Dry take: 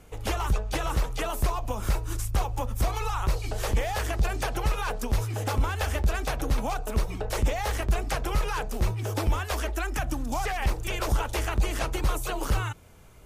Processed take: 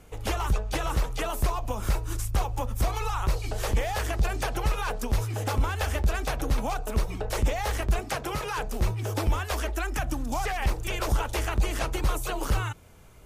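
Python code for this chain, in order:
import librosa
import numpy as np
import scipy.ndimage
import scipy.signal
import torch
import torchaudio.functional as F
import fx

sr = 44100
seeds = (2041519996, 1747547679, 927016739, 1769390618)

y = fx.highpass(x, sr, hz=100.0, slope=12, at=(7.99, 8.58))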